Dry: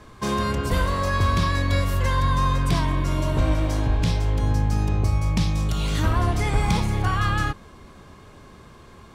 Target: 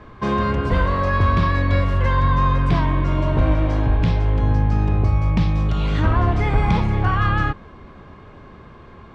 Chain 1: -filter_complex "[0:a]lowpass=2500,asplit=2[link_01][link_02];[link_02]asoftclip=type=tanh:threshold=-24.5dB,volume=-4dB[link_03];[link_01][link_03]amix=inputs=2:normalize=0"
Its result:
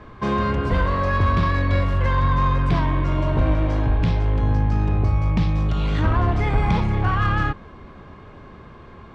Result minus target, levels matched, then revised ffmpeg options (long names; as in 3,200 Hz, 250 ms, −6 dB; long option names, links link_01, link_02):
soft clipping: distortion +13 dB
-filter_complex "[0:a]lowpass=2500,asplit=2[link_01][link_02];[link_02]asoftclip=type=tanh:threshold=-13dB,volume=-4dB[link_03];[link_01][link_03]amix=inputs=2:normalize=0"